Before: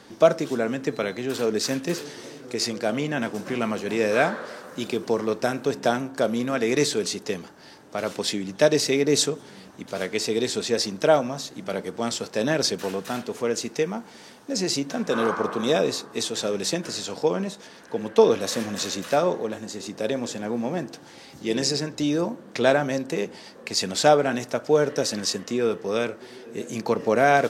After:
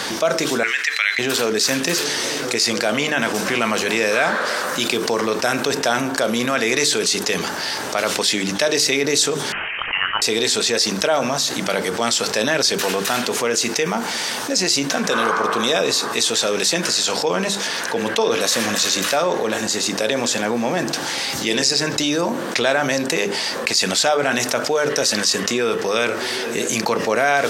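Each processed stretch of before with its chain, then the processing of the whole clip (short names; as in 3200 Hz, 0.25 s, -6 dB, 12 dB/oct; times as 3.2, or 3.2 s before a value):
0.63–1.19 resonant high-pass 2000 Hz, resonance Q 3.1 + high shelf 7900 Hz -7 dB
9.52–10.22 HPF 940 Hz + inverted band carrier 3400 Hz
whole clip: tilt shelf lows -6.5 dB, about 690 Hz; notches 50/100/150/200/250/300/350/400/450 Hz; fast leveller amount 70%; gain -3.5 dB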